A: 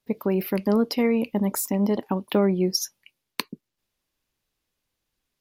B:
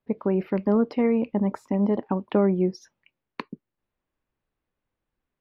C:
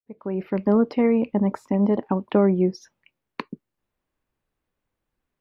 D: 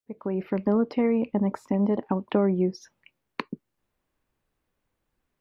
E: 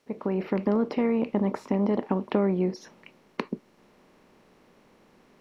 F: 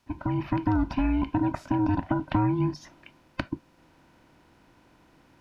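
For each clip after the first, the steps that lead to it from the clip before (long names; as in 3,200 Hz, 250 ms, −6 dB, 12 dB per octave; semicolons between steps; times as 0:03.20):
low-pass filter 1,700 Hz 12 dB per octave
fade in at the beginning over 0.69 s; level +2.5 dB
downward compressor 1.5 to 1, threshold −33 dBFS, peak gain reduction 7 dB; level +2.5 dB
compressor on every frequency bin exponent 0.6; level −3 dB
frequency inversion band by band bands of 500 Hz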